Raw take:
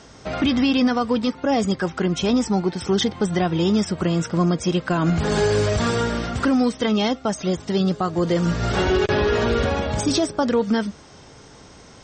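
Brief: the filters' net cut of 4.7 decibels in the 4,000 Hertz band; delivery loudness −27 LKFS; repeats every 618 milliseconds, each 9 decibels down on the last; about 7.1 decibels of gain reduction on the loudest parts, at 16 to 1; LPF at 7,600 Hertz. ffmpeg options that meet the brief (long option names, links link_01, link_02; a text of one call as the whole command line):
ffmpeg -i in.wav -af "lowpass=7600,equalizer=frequency=4000:width_type=o:gain=-6,acompressor=threshold=-22dB:ratio=16,aecho=1:1:618|1236|1854|2472:0.355|0.124|0.0435|0.0152,volume=-0.5dB" out.wav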